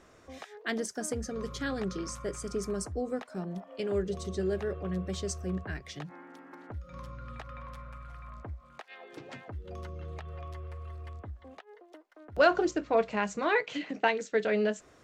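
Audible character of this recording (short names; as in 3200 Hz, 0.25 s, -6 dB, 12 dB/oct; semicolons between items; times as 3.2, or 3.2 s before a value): noise floor -58 dBFS; spectral tilt -5.0 dB/oct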